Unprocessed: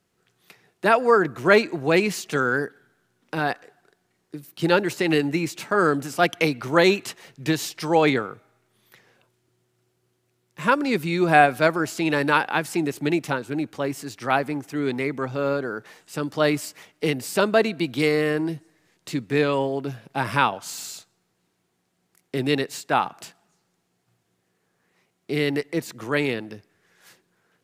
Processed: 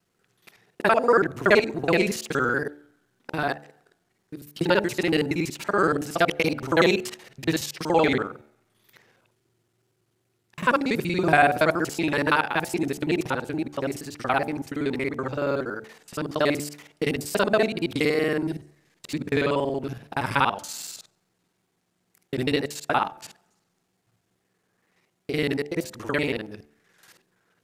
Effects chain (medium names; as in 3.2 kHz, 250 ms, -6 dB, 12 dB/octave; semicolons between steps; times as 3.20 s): time reversed locally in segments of 47 ms; wow and flutter 43 cents; de-hum 73.26 Hz, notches 12; trim -1 dB